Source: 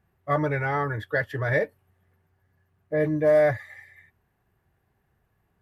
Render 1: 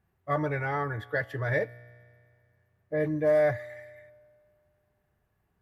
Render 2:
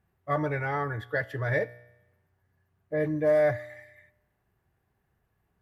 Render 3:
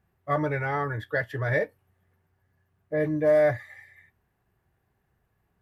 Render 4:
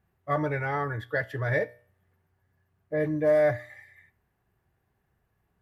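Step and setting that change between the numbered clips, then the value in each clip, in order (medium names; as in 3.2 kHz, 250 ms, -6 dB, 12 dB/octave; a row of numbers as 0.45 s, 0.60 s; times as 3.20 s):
feedback comb, decay: 2.1 s, 0.93 s, 0.17 s, 0.44 s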